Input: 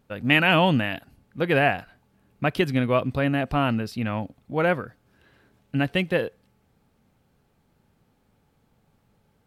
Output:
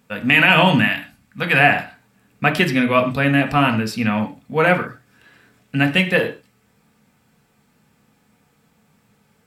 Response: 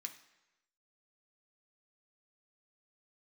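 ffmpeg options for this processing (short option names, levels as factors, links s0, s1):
-filter_complex "[0:a]asettb=1/sr,asplit=3[s0][s1][s2];[s0]atrim=end=0.794[s3];[s1]atrim=start=0.79:end=1.6,asetpts=PTS-STARTPTS,afade=t=in:d=0.004:c=qsin,afade=t=out:st=0.806:d=0.004:c=qsin,equalizer=f=410:t=o:w=0.75:g=-11.5[s4];[s2]atrim=start=1.596[s5];[s3][s4]acrossfade=d=0.004:c1=hsin:c2=qsin[s6];[s6][s5]acrossfade=d=0.004:c1=qsin:c2=hsin[s7];[1:a]atrim=start_sample=2205,atrim=end_sample=6174[s8];[s7][s8]afir=irnorm=-1:irlink=0,alimiter=level_in=5.31:limit=0.891:release=50:level=0:latency=1,volume=0.891"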